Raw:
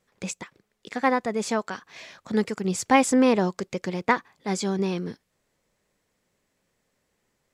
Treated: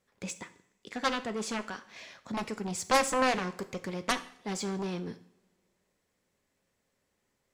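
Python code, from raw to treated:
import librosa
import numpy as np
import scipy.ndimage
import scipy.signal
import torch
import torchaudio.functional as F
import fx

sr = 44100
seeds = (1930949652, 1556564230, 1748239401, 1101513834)

y = fx.cheby_harmonics(x, sr, harmonics=(7,), levels_db=(-9,), full_scale_db=-6.0)
y = fx.rev_double_slope(y, sr, seeds[0], early_s=0.55, late_s=1.9, knee_db=-22, drr_db=10.5)
y = y * 10.0 ** (-8.0 / 20.0)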